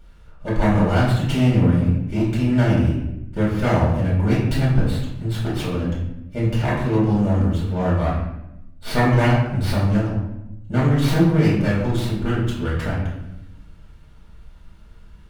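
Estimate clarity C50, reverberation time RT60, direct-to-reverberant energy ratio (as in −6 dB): 2.0 dB, 0.85 s, −8.5 dB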